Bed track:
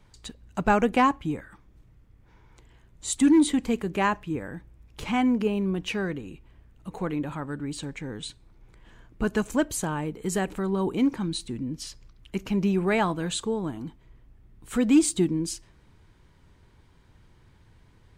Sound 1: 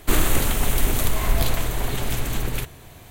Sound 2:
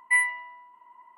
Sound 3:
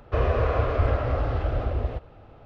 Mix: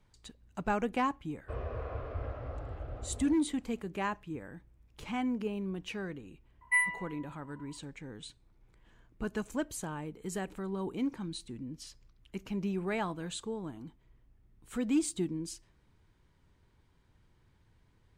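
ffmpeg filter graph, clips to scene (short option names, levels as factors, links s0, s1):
-filter_complex "[0:a]volume=0.316[s0];[3:a]highshelf=f=3000:g=-8,atrim=end=2.45,asetpts=PTS-STARTPTS,volume=0.168,afade=t=in:d=0.004:c=hsin,afade=t=out:st=2.446:d=0.004:c=hsin,adelay=1360[s1];[2:a]atrim=end=1.17,asetpts=PTS-STARTPTS,volume=0.531,afade=t=in:d=0.004:c=hsin,afade=t=out:st=1.166:d=0.004:c=hsin,adelay=6610[s2];[s0][s1][s2]amix=inputs=3:normalize=0"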